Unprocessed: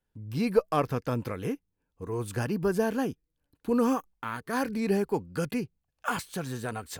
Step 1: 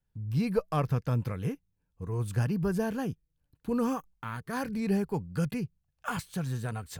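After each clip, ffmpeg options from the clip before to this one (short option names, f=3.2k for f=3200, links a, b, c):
-af "lowshelf=f=210:t=q:w=1.5:g=7.5,volume=-4dB"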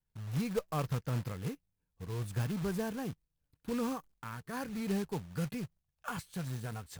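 -af "acrusher=bits=3:mode=log:mix=0:aa=0.000001,volume=-6dB"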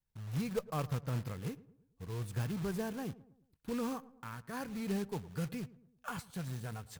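-filter_complex "[0:a]asplit=2[a][b];[b]adelay=110,lowpass=f=1.2k:p=1,volume=-18dB,asplit=2[c][d];[d]adelay=110,lowpass=f=1.2k:p=1,volume=0.48,asplit=2[e][f];[f]adelay=110,lowpass=f=1.2k:p=1,volume=0.48,asplit=2[g][h];[h]adelay=110,lowpass=f=1.2k:p=1,volume=0.48[i];[a][c][e][g][i]amix=inputs=5:normalize=0,volume=-2dB"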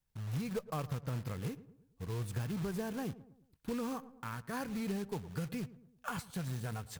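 -af "acompressor=threshold=-37dB:ratio=6,volume=3.5dB"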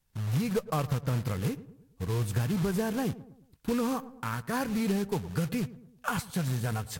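-af "volume=8.5dB" -ar 44100 -c:a libvorbis -b:a 64k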